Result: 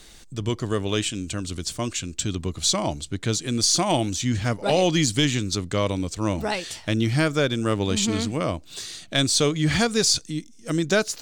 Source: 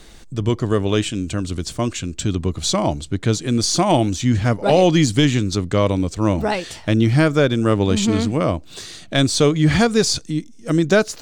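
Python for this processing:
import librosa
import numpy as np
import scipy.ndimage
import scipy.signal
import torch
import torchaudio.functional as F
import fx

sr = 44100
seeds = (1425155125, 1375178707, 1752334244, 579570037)

y = fx.high_shelf(x, sr, hz=2100.0, db=8.5)
y = F.gain(torch.from_numpy(y), -7.0).numpy()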